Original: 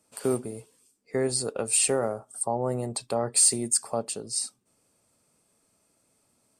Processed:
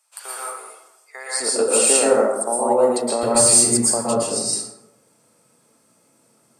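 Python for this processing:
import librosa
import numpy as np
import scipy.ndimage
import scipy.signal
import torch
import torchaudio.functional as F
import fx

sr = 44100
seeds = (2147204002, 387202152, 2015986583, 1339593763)

y = fx.highpass(x, sr, hz=fx.steps((0.0, 830.0), (1.4, 240.0), (3.23, 110.0)), slope=24)
y = fx.rev_plate(y, sr, seeds[0], rt60_s=1.0, hf_ratio=0.45, predelay_ms=105, drr_db=-6.5)
y = y * 10.0 ** (3.5 / 20.0)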